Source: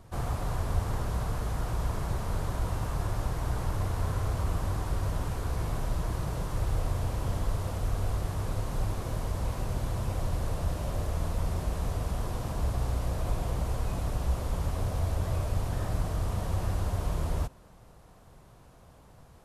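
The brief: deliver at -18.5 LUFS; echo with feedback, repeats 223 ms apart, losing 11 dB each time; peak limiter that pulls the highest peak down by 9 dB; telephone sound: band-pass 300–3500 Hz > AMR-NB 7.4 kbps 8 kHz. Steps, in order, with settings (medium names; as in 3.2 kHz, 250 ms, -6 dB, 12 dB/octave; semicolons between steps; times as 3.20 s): peak limiter -25 dBFS; band-pass 300–3500 Hz; feedback delay 223 ms, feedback 28%, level -11 dB; trim +27 dB; AMR-NB 7.4 kbps 8 kHz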